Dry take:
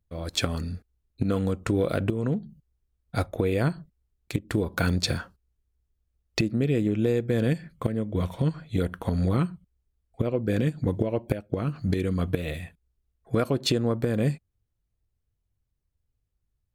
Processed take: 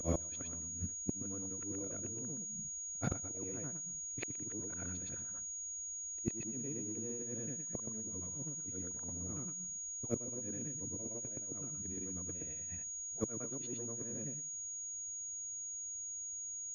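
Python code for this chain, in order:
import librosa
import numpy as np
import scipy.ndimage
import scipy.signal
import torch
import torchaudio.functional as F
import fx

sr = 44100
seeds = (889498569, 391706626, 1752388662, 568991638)

p1 = fx.frame_reverse(x, sr, frame_ms=244.0)
p2 = fx.peak_eq(p1, sr, hz=280.0, db=7.0, octaves=0.68)
p3 = 10.0 ** (-29.0 / 20.0) * np.tanh(p2 / 10.0 ** (-29.0 / 20.0))
p4 = p2 + (p3 * 10.0 ** (-10.5 / 20.0))
p5 = fx.gate_flip(p4, sr, shuts_db=-27.0, range_db=-26)
p6 = fx.pwm(p5, sr, carrier_hz=6700.0)
y = p6 * 10.0 ** (5.0 / 20.0)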